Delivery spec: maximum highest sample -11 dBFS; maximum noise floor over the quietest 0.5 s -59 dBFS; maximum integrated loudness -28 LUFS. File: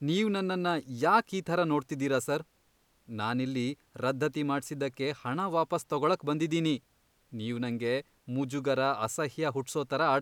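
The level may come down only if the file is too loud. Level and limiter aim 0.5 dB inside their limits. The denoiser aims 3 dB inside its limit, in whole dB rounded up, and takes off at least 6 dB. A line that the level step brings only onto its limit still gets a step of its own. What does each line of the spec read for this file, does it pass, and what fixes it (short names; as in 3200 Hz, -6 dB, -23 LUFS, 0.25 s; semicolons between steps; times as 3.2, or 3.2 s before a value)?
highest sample -12.5 dBFS: OK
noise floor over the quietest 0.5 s -69 dBFS: OK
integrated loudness -31.0 LUFS: OK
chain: none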